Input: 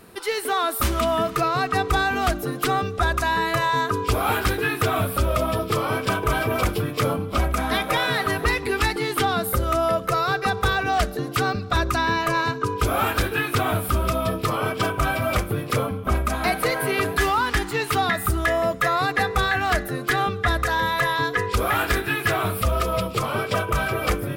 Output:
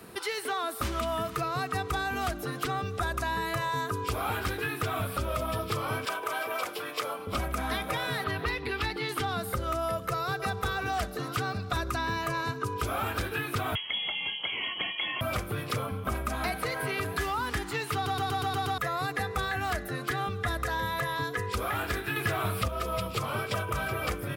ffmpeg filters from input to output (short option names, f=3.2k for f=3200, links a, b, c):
-filter_complex "[0:a]asettb=1/sr,asplit=3[a][b][c];[a]atrim=end=6.054[d];[b]atrim=start=6.05:end=7.27,asetpts=PTS-STARTPTS,afade=t=in:d=0.004:c=qsin,afade=t=out:st=1.216:d=0.004:c=qsin,highpass=640[e];[c]atrim=start=7.266[f];[d][e]acrossfade=d=0.004:c1=hsin:c2=qsin[g];[g][f]acrossfade=d=0.004:c1=qsin:c2=hsin,asettb=1/sr,asplit=3[h][i][j];[h]atrim=end=8.244[k];[i]atrim=start=8.24:end=9.09,asetpts=PTS-STARTPTS,afade=t=in:d=0.004:c=qsin,afade=t=out:st=0.846:d=0.004:c=qsin,highshelf=f=5.6k:t=q:w=1.5:g=-12.5[l];[j]atrim=start=9.086[m];[k][l]acrossfade=d=0.004:c1=hsin:c2=qsin[n];[n][m]acrossfade=d=0.004:c1=qsin:c2=hsin,asplit=2[o][p];[p]afade=t=in:st=9.85:d=0.01,afade=t=out:st=10.54:d=0.01,aecho=0:1:540|1080|1620|2160|2700|3240:0.211349|0.116242|0.063933|0.0351632|0.0193397|0.0106369[q];[o][q]amix=inputs=2:normalize=0,asettb=1/sr,asplit=3[r][s][t];[r]atrim=end=13.754[u];[s]atrim=start=13.75:end=15.21,asetpts=PTS-STARTPTS,afade=t=in:d=0.004:c=qsin,afade=t=out:st=1.456:d=0.004:c=qsin,lowpass=f=2.9k:t=q:w=0.5098,lowpass=f=2.9k:t=q:w=0.6013,lowpass=f=2.9k:t=q:w=0.9,lowpass=f=2.9k:t=q:w=2.563,afreqshift=-3400[v];[t]atrim=start=15.206[w];[u][v]acrossfade=d=0.004:c1=hsin:c2=qsin[x];[x][w]acrossfade=d=0.004:c1=qsin:c2=hsin,asettb=1/sr,asplit=3[y][z][aa];[y]atrim=end=22.164[ab];[z]atrim=start=22.16:end=22.68,asetpts=PTS-STARTPTS,afade=t=in:d=0.004:c=qsin,afade=t=out:st=0.516:d=0.004:c=qsin,acontrast=69[ac];[aa]atrim=start=22.676[ad];[ab][ac]acrossfade=d=0.004:c1=hsin:c2=qsin[ae];[ae][ad]acrossfade=d=0.004:c1=qsin:c2=hsin,asplit=8[af][ag][ah][ai][aj][ak][al][am];[af]atrim=end=18.062[an];[ag]atrim=start=17.938:end=18.062[ao];[ah]atrim=start=17.938:end=18.062[ap];[ai]atrim=start=17.938:end=18.062[aq];[aj]atrim=start=17.938:end=18.062[ar];[ak]atrim=start=17.938:end=18.062[as];[al]atrim=start=17.938:end=18.062[at];[am]atrim=start=18.778[au];[an][ao]acrossfade=d=0.004:c1=hsin:c2=hsin[av];[av][ap]acrossfade=d=0.004:c1=hsin:c2=hsin[aw];[aw][aq]acrossfade=d=0.004:c1=hsin:c2=hsin[ax];[ax][ar]acrossfade=d=0.004:c1=hsin:c2=hsin[ay];[ay][as]acrossfade=d=0.004:c1=hsin:c2=hsin[az];[az][at]acrossfade=d=0.004:c1=hsin:c2=hsin[ba];[ba][au]acrossfade=d=0.004:c1=hsin:c2=hsin,highpass=59,acrossover=split=110|770|7400[bb][bc][bd][be];[bb]acompressor=threshold=-35dB:ratio=4[bf];[bc]acompressor=threshold=-37dB:ratio=4[bg];[bd]acompressor=threshold=-33dB:ratio=4[bh];[be]acompressor=threshold=-47dB:ratio=4[bi];[bf][bg][bh][bi]amix=inputs=4:normalize=0"